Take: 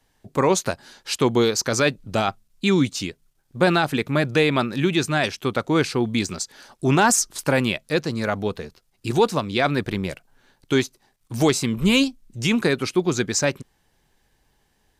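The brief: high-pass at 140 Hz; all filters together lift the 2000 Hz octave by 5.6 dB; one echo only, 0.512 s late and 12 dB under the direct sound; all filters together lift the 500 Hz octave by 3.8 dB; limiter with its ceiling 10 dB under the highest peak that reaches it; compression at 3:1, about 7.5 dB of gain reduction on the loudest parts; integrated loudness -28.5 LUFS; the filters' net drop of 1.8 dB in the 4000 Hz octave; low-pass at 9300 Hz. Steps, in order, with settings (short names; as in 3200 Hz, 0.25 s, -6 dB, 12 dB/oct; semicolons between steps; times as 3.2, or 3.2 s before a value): HPF 140 Hz; LPF 9300 Hz; bell 500 Hz +4.5 dB; bell 2000 Hz +8.5 dB; bell 4000 Hz -5.5 dB; compressor 3:1, threshold -20 dBFS; limiter -15.5 dBFS; echo 0.512 s -12 dB; gain -0.5 dB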